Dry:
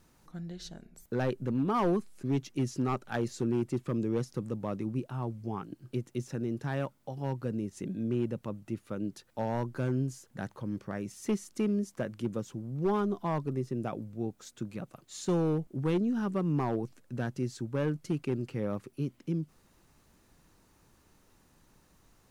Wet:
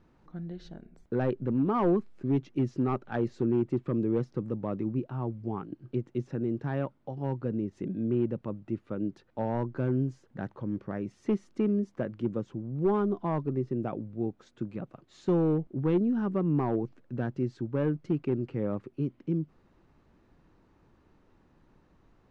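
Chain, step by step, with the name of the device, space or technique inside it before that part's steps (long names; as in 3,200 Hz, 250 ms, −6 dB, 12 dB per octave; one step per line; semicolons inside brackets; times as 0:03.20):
phone in a pocket (low-pass filter 3,700 Hz 12 dB per octave; parametric band 330 Hz +3 dB 0.77 octaves; high-shelf EQ 2,200 Hz −9 dB)
level +1.5 dB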